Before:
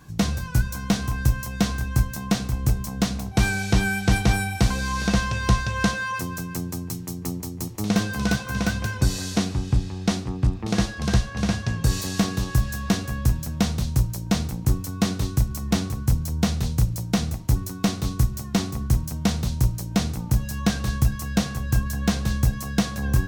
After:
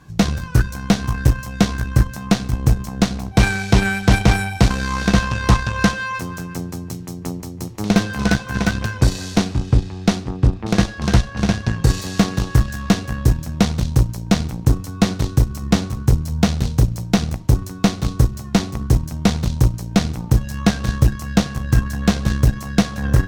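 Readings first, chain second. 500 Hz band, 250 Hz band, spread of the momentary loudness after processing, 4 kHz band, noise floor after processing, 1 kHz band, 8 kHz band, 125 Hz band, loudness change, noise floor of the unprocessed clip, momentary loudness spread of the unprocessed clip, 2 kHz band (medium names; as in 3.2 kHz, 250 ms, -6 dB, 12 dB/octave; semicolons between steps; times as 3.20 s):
+7.0 dB, +5.5 dB, 4 LU, +4.0 dB, -32 dBFS, +5.5 dB, +2.0 dB, +5.5 dB, +5.5 dB, -35 dBFS, 3 LU, +4.5 dB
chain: treble shelf 8.1 kHz -10 dB; Chebyshev shaper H 4 -18 dB, 5 -21 dB, 6 -17 dB, 7 -19 dB, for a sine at -7 dBFS; trim +5.5 dB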